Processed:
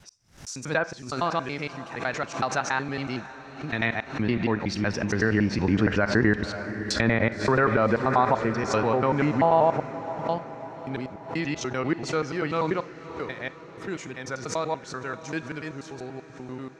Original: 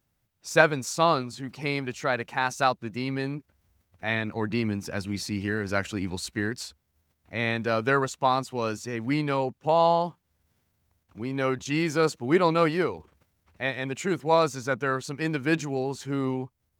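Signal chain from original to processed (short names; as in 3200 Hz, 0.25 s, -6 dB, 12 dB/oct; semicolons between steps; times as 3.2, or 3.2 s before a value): slices in reverse order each 95 ms, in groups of 5; Doppler pass-by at 6.8, 7 m/s, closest 5 m; LPF 9000 Hz 12 dB/oct; bell 5700 Hz +5 dB 0.39 oct; Schroeder reverb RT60 0.33 s, combs from 31 ms, DRR 17 dB; treble ducked by the level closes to 1700 Hz, closed at -32 dBFS; bell 1600 Hz +2.5 dB 0.77 oct; diffused feedback echo 0.562 s, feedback 58%, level -15 dB; maximiser +22.5 dB; backwards sustainer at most 130 dB/s; gain -9 dB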